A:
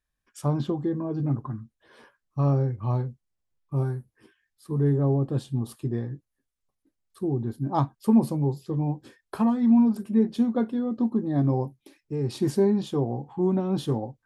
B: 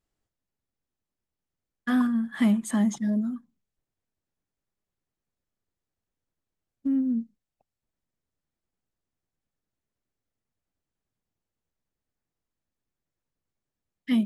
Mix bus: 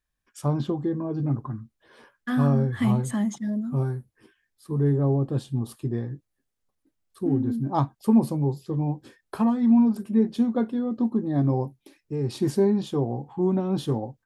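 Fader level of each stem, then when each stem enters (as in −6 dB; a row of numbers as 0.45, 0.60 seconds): +0.5, −2.0 decibels; 0.00, 0.40 seconds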